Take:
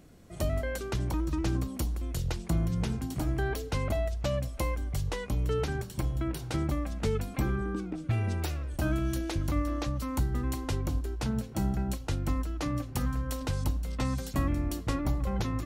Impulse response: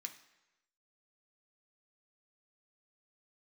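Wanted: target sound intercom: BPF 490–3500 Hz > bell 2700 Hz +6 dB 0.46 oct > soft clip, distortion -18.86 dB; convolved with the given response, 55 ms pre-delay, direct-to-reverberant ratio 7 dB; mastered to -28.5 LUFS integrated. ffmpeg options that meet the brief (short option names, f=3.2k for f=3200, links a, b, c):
-filter_complex "[0:a]asplit=2[a][b];[1:a]atrim=start_sample=2205,adelay=55[c];[b][c]afir=irnorm=-1:irlink=0,volume=-3dB[d];[a][d]amix=inputs=2:normalize=0,highpass=490,lowpass=3.5k,equalizer=f=2.7k:t=o:w=0.46:g=6,asoftclip=threshold=-29.5dB,volume=12dB"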